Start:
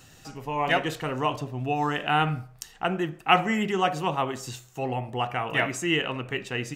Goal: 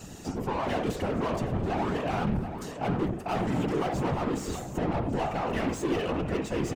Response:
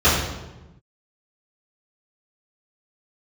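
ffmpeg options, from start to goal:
-filter_complex "[0:a]firequalizer=gain_entry='entry(140,0);entry(590,-12);entry(1600,-20);entry(7000,-5)':delay=0.05:min_phase=1,asplit=2[s0][s1];[s1]highpass=f=720:p=1,volume=63.1,asoftclip=type=tanh:threshold=0.126[s2];[s0][s2]amix=inputs=2:normalize=0,lowpass=f=1400:p=1,volume=0.501,afftfilt=real='hypot(re,im)*cos(2*PI*random(0))':imag='hypot(re,im)*sin(2*PI*random(1))':win_size=512:overlap=0.75,asplit=2[s3][s4];[s4]adelay=730,lowpass=f=3000:p=1,volume=0.335,asplit=2[s5][s6];[s6]adelay=730,lowpass=f=3000:p=1,volume=0.38,asplit=2[s7][s8];[s8]adelay=730,lowpass=f=3000:p=1,volume=0.38,asplit=2[s9][s10];[s10]adelay=730,lowpass=f=3000:p=1,volume=0.38[s11];[s3][s5][s7][s9][s11]amix=inputs=5:normalize=0,volume=1.33"

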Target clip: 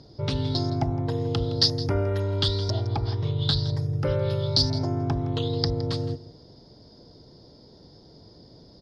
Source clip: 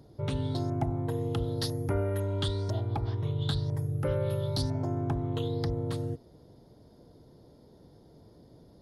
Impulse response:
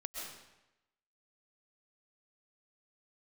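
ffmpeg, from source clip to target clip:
-af "lowpass=f=5000:t=q:w=6,aecho=1:1:165:0.15,volume=1.58"

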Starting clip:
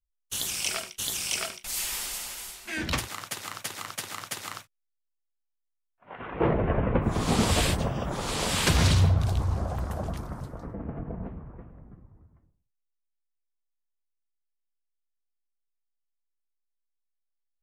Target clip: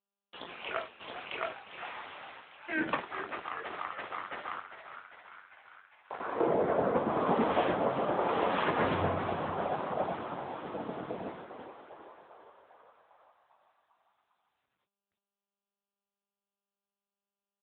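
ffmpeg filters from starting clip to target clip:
-filter_complex "[0:a]lowpass=1500,agate=range=0.0224:threshold=0.00501:ratio=3:detection=peak,highpass=350,alimiter=limit=0.075:level=0:latency=1:release=208,acontrast=48,aeval=exprs='sgn(val(0))*max(abs(val(0))-0.00398,0)':c=same,acrusher=bits=7:mix=0:aa=0.000001,asplit=2[s0][s1];[s1]adelay=22,volume=0.398[s2];[s0][s2]amix=inputs=2:normalize=0,asplit=9[s3][s4][s5][s6][s7][s8][s9][s10][s11];[s4]adelay=400,afreqshift=68,volume=0.316[s12];[s5]adelay=800,afreqshift=136,volume=0.202[s13];[s6]adelay=1200,afreqshift=204,volume=0.129[s14];[s7]adelay=1600,afreqshift=272,volume=0.0832[s15];[s8]adelay=2000,afreqshift=340,volume=0.0531[s16];[s9]adelay=2400,afreqshift=408,volume=0.0339[s17];[s10]adelay=2800,afreqshift=476,volume=0.0216[s18];[s11]adelay=3200,afreqshift=544,volume=0.014[s19];[s3][s12][s13][s14][s15][s16][s17][s18][s19]amix=inputs=9:normalize=0" -ar 8000 -c:a libopencore_amrnb -b:a 10200

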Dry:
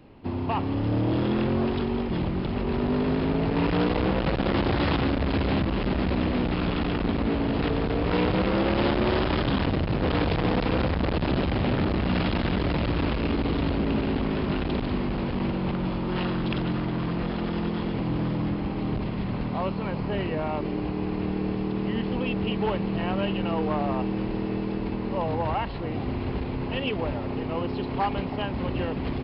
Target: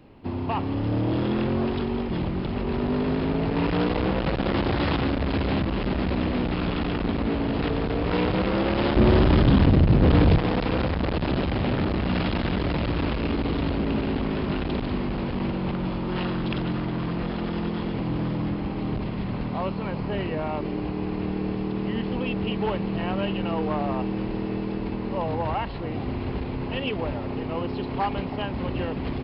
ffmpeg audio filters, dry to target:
-filter_complex "[0:a]asettb=1/sr,asplit=3[s0][s1][s2];[s0]atrim=end=8.964[s3];[s1]atrim=start=8.96:end=10.38,asetpts=PTS-STARTPTS,afade=t=in:d=0.004:c=qsin,afade=t=out:st=1.416:d=0.004:c=qsin,lowshelf=f=350:g=10.5[s4];[s2]atrim=start=10.376[s5];[s3][s4]acrossfade=d=0.004:c1=hsin:c2=qsin[s6];[s6][s5]acrossfade=d=0.004:c1=qsin:c2=hsin"

